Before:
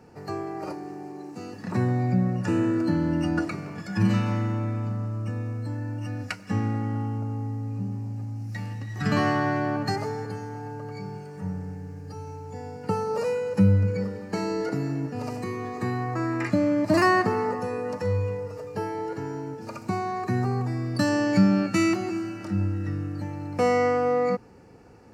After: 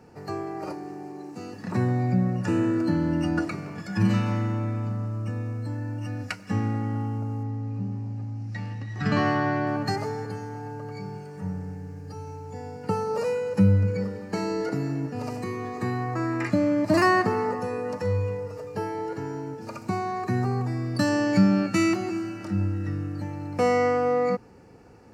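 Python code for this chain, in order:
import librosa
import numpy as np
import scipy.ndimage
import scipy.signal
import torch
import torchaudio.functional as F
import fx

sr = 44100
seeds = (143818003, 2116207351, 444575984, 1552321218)

y = fx.lowpass(x, sr, hz=5400.0, slope=12, at=(7.43, 9.67))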